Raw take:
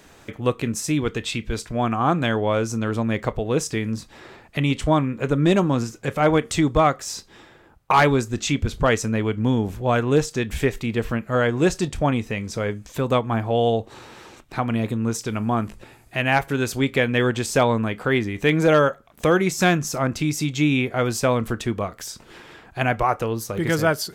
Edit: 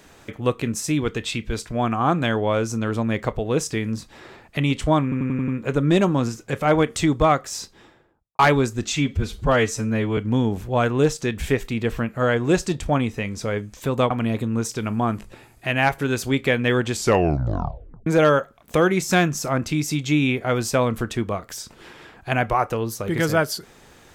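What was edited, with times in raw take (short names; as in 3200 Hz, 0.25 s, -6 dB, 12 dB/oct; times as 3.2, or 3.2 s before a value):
5.03 stutter 0.09 s, 6 plays
7.15–7.94 studio fade out
8.45–9.3 stretch 1.5×
13.23–14.6 cut
17.42 tape stop 1.14 s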